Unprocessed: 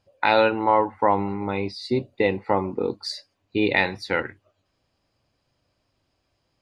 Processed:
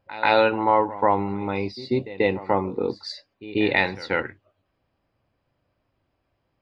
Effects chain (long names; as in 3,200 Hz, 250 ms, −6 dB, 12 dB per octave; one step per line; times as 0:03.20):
low-pass that shuts in the quiet parts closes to 2,400 Hz, open at −17 dBFS
echo ahead of the sound 138 ms −16.5 dB